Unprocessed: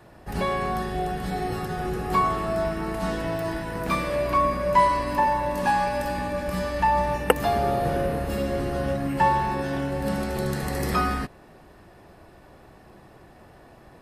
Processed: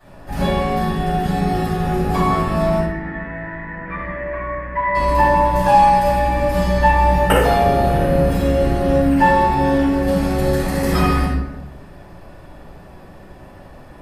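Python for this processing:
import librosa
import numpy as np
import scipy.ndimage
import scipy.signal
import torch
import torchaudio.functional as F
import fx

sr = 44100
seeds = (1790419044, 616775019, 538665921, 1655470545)

y = fx.ladder_lowpass(x, sr, hz=2000.0, resonance_pct=80, at=(2.79, 4.95))
y = fx.room_shoebox(y, sr, seeds[0], volume_m3=270.0, walls='mixed', distance_m=6.4)
y = y * 10.0 ** (-7.5 / 20.0)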